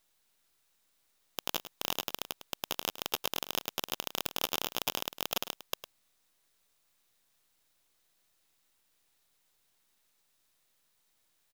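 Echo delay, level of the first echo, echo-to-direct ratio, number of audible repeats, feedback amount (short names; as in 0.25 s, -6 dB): 0.105 s, -13.0 dB, -13.0 dB, 1, no steady repeat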